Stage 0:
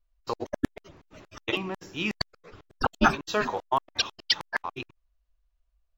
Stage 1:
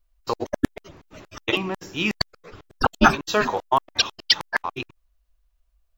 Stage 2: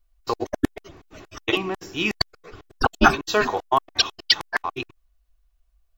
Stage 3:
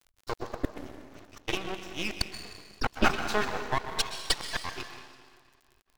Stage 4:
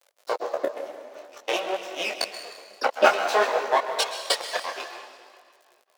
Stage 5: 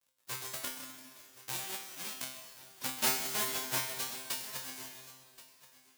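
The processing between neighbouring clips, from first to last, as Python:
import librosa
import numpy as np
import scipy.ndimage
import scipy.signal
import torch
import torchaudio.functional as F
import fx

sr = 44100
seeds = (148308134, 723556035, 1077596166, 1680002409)

y1 = fx.high_shelf(x, sr, hz=8800.0, db=5.0)
y1 = y1 * librosa.db_to_amplitude(5.5)
y2 = y1 + 0.32 * np.pad(y1, (int(2.7 * sr / 1000.0), 0))[:len(y1)]
y3 = fx.rev_plate(y2, sr, seeds[0], rt60_s=1.9, hf_ratio=0.9, predelay_ms=105, drr_db=6.5)
y3 = fx.dmg_crackle(y3, sr, seeds[1], per_s=78.0, level_db=-40.0)
y3 = np.maximum(y3, 0.0)
y3 = y3 * librosa.db_to_amplitude(-5.5)
y4 = fx.highpass_res(y3, sr, hz=560.0, q=4.1)
y4 = fx.detune_double(y4, sr, cents=19)
y4 = y4 * librosa.db_to_amplitude(7.5)
y5 = fx.envelope_flatten(y4, sr, power=0.1)
y5 = fx.comb_fb(y5, sr, f0_hz=130.0, decay_s=0.58, harmonics='all', damping=0.0, mix_pct=90)
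y5 = y5 + 10.0 ** (-18.0 / 20.0) * np.pad(y5, (int(1078 * sr / 1000.0), 0))[:len(y5)]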